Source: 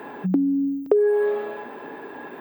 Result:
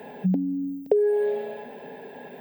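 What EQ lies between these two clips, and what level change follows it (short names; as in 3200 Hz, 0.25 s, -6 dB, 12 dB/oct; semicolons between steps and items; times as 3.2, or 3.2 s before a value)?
low shelf 96 Hz +10 dB; fixed phaser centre 320 Hz, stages 6; 0.0 dB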